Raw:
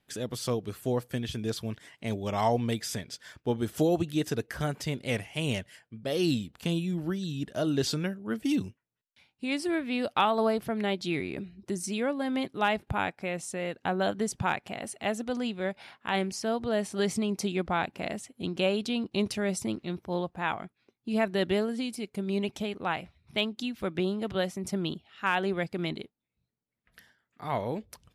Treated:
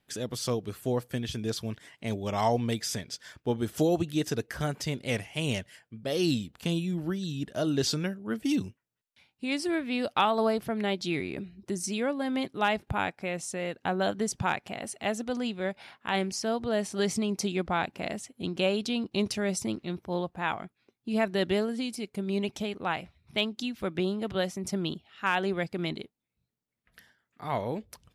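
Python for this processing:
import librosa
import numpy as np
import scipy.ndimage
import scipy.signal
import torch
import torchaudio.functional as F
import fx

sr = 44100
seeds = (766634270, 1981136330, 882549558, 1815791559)

y = fx.dynamic_eq(x, sr, hz=5700.0, q=1.6, threshold_db=-50.0, ratio=4.0, max_db=4)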